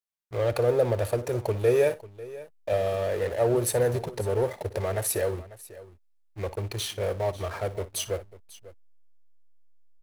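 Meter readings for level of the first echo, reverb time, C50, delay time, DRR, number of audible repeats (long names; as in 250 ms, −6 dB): −16.5 dB, no reverb audible, no reverb audible, 58 ms, no reverb audible, 2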